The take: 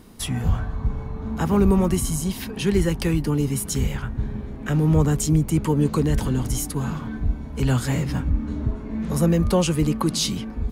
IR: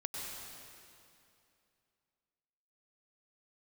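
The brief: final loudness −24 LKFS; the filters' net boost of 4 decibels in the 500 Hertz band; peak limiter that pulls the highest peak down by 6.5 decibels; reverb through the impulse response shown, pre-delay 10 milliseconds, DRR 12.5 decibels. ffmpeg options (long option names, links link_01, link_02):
-filter_complex "[0:a]equalizer=frequency=500:width_type=o:gain=5,alimiter=limit=-12.5dB:level=0:latency=1,asplit=2[link_01][link_02];[1:a]atrim=start_sample=2205,adelay=10[link_03];[link_02][link_03]afir=irnorm=-1:irlink=0,volume=-14dB[link_04];[link_01][link_04]amix=inputs=2:normalize=0"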